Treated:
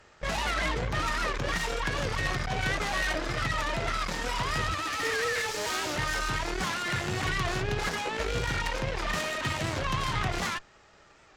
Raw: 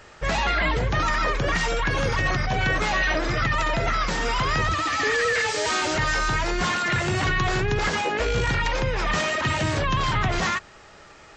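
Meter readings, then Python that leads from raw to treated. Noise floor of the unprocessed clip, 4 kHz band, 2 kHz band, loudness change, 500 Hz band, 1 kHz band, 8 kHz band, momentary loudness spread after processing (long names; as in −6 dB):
−48 dBFS, −4.5 dB, −6.5 dB, −6.5 dB, −7.0 dB, −7.0 dB, −4.0 dB, 2 LU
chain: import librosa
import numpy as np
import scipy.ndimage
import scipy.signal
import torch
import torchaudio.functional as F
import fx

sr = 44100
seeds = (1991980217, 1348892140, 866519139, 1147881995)

y = fx.cheby_harmonics(x, sr, harmonics=(3, 8), levels_db=(-15, -22), full_scale_db=-12.0)
y = fx.record_warp(y, sr, rpm=78.0, depth_cents=100.0)
y = F.gain(torch.from_numpy(y), -3.0).numpy()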